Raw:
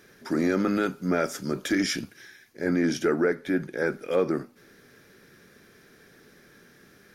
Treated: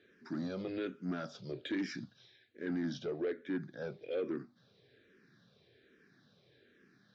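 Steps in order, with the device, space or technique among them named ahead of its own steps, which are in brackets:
barber-pole phaser into a guitar amplifier (frequency shifter mixed with the dry sound −1.2 Hz; soft clipping −20.5 dBFS, distortion −16 dB; loudspeaker in its box 82–4,500 Hz, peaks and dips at 120 Hz +6 dB, 890 Hz −7 dB, 1,300 Hz −5 dB, 2,100 Hz −4 dB, 3,800 Hz +6 dB)
level −8 dB

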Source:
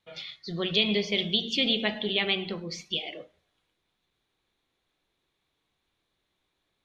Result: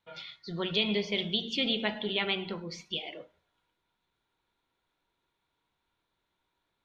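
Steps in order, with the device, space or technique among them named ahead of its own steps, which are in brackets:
inside a helmet (high-shelf EQ 4,700 Hz −5 dB; hollow resonant body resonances 950/1,400 Hz, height 12 dB, ringing for 40 ms)
level −3 dB

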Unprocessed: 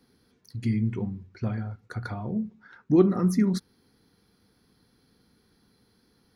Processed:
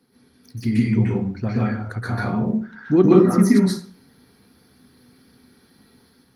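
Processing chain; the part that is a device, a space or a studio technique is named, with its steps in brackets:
far-field microphone of a smart speaker (convolution reverb RT60 0.45 s, pre-delay 120 ms, DRR −7 dB; high-pass filter 94 Hz 12 dB per octave; automatic gain control gain up to 3.5 dB; level +1.5 dB; Opus 32 kbit/s 48,000 Hz)

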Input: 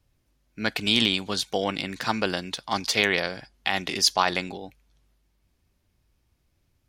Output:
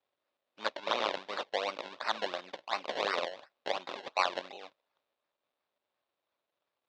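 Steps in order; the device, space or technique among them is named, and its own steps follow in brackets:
0:03.90–0:04.32: Chebyshev low-pass filter 4,100 Hz, order 6
circuit-bent sampling toy (sample-and-hold swept by an LFO 25×, swing 100% 2.8 Hz; loudspeaker in its box 550–5,200 Hz, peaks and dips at 570 Hz +7 dB, 1,100 Hz +3 dB, 2,600 Hz +4 dB, 3,700 Hz +8 dB)
0:00.72–0:01.17: graphic EQ with 15 bands 100 Hz −4 dB, 250 Hz −4 dB, 10,000 Hz −6 dB
level −8 dB

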